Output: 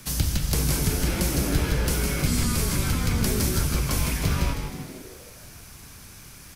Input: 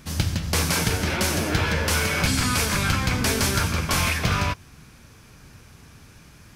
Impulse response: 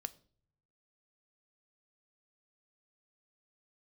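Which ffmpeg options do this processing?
-filter_complex "[0:a]acrossover=split=510[a][b];[b]acompressor=threshold=-35dB:ratio=6[c];[a][c]amix=inputs=2:normalize=0,afreqshift=-21,aemphasis=mode=production:type=50kf,asplit=8[d][e][f][g][h][i][j][k];[e]adelay=157,afreqshift=-110,volume=-6.5dB[l];[f]adelay=314,afreqshift=-220,volume=-11.9dB[m];[g]adelay=471,afreqshift=-330,volume=-17.2dB[n];[h]adelay=628,afreqshift=-440,volume=-22.6dB[o];[i]adelay=785,afreqshift=-550,volume=-27.9dB[p];[j]adelay=942,afreqshift=-660,volume=-33.3dB[q];[k]adelay=1099,afreqshift=-770,volume=-38.6dB[r];[d][l][m][n][o][p][q][r]amix=inputs=8:normalize=0"

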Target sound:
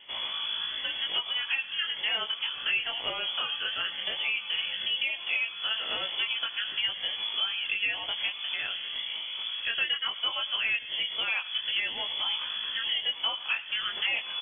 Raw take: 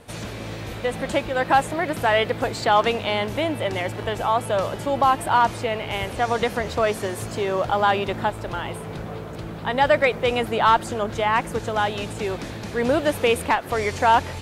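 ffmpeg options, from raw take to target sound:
-filter_complex "[0:a]afftfilt=real='re*pow(10,7/40*sin(2*PI*(0.85*log(max(b,1)*sr/1024/100)/log(2)-(-1)*(pts-256)/sr)))':imag='im*pow(10,7/40*sin(2*PI*(0.85*log(max(b,1)*sr/1024/100)/log(2)-(-1)*(pts-256)/sr)))':win_size=1024:overlap=0.75,acompressor=threshold=-24dB:ratio=6,flanger=delay=18:depth=5.2:speed=0.16,asplit=2[a][b];[b]aecho=0:1:110:0.112[c];[a][c]amix=inputs=2:normalize=0,lowpass=f=3k:t=q:w=0.5098,lowpass=f=3k:t=q:w=0.6013,lowpass=f=3k:t=q:w=0.9,lowpass=f=3k:t=q:w=2.563,afreqshift=-3500"

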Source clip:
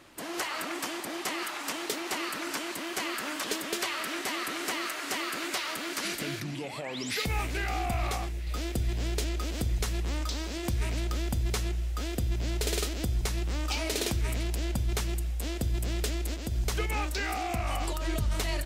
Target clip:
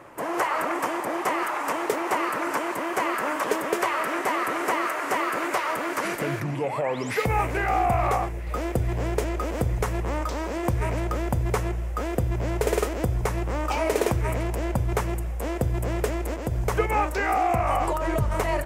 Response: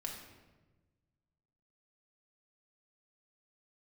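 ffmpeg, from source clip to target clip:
-af "equalizer=f=125:t=o:w=1:g=9,equalizer=f=500:t=o:w=1:g=11,equalizer=f=1k:t=o:w=1:g=11,equalizer=f=2k:t=o:w=1:g=5,equalizer=f=4k:t=o:w=1:g=-10"

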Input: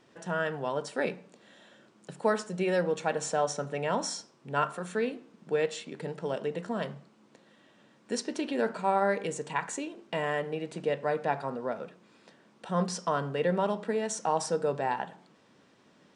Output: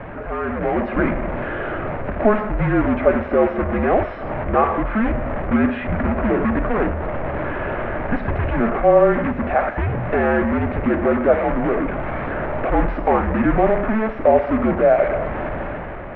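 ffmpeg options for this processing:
-filter_complex "[0:a]aeval=exprs='val(0)+0.5*0.0251*sgn(val(0))':c=same,equalizer=f=820:t=o:w=0.28:g=11,asplit=2[a][b];[b]aeval=exprs='(mod(21.1*val(0)+1,2)-1)/21.1':c=same,volume=-3dB[c];[a][c]amix=inputs=2:normalize=0,highpass=f=150:t=q:w=0.5412,highpass=f=150:t=q:w=1.307,lowpass=f=2.3k:t=q:w=0.5176,lowpass=f=2.3k:t=q:w=0.7071,lowpass=f=2.3k:t=q:w=1.932,afreqshift=-220,dynaudnorm=f=180:g=7:m=9dB"

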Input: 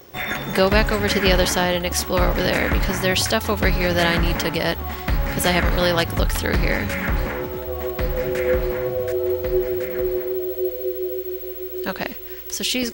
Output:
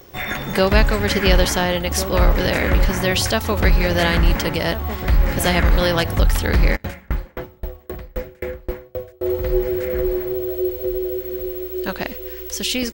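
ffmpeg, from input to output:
-filter_complex "[0:a]lowshelf=f=66:g=9.5,asplit=2[a][b];[b]adelay=1399,volume=-10dB,highshelf=f=4k:g=-31.5[c];[a][c]amix=inputs=2:normalize=0,asplit=3[d][e][f];[d]afade=t=out:st=6.75:d=0.02[g];[e]aeval=exprs='val(0)*pow(10,-35*if(lt(mod(3.8*n/s,1),2*abs(3.8)/1000),1-mod(3.8*n/s,1)/(2*abs(3.8)/1000),(mod(3.8*n/s,1)-2*abs(3.8)/1000)/(1-2*abs(3.8)/1000))/20)':c=same,afade=t=in:st=6.75:d=0.02,afade=t=out:st=9.21:d=0.02[h];[f]afade=t=in:st=9.21:d=0.02[i];[g][h][i]amix=inputs=3:normalize=0"

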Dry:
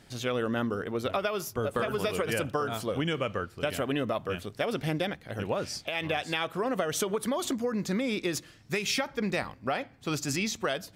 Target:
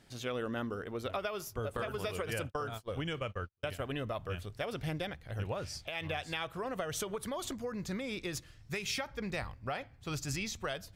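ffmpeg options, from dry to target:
-filter_complex "[0:a]asettb=1/sr,asplit=3[a][b][c];[a]atrim=end=1.774[d];[b]atrim=start=1.77:end=4.1,asetpts=PTS-STARTPTS,afade=t=in:d=0.004:c=qsin,afade=t=out:st=2.326:d=0.004:c=qsin,agate=range=-42dB:threshold=-32dB:ratio=16:detection=peak[e];[c]atrim=start=4.096[f];[d][e]acrossfade=d=0.004:c1=hsin:c2=qsin[g];[g][f]acrossfade=d=0.004:c1=qsin:c2=hsin,asubboost=boost=8:cutoff=83,volume=-6.5dB"

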